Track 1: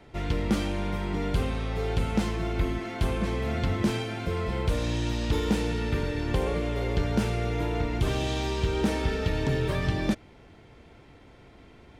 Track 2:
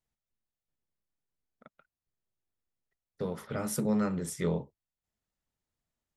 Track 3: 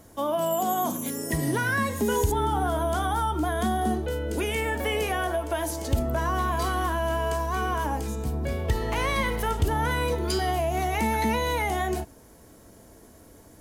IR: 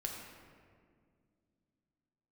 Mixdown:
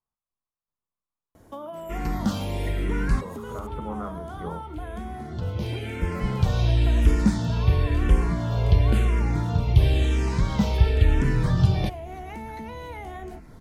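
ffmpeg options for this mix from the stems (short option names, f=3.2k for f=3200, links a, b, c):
-filter_complex "[0:a]asubboost=boost=3:cutoff=210,asplit=2[a][b];[b]afreqshift=-0.97[c];[a][c]amix=inputs=2:normalize=1,adelay=1750,volume=2.5dB[d];[1:a]lowpass=f=1.1k:t=q:w=4.9,volume=-6.5dB,asplit=2[e][f];[2:a]highshelf=f=3.4k:g=-10.5,acompressor=threshold=-35dB:ratio=4,adelay=1350,volume=-1dB[g];[f]apad=whole_len=606128[h];[d][h]sidechaincompress=threshold=-52dB:ratio=8:attack=10:release=1000[i];[i][e][g]amix=inputs=3:normalize=0"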